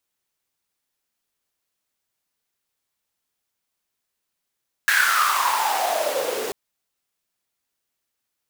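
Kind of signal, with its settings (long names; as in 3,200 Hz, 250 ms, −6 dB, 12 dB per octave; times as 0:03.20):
filter sweep on noise pink, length 1.64 s highpass, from 1,700 Hz, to 400 Hz, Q 8.5, exponential, gain ramp −9 dB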